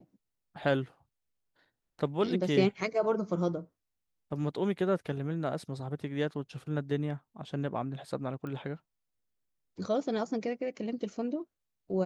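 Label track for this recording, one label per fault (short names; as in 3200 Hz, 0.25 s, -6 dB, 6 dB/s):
8.470000	8.470000	pop -29 dBFS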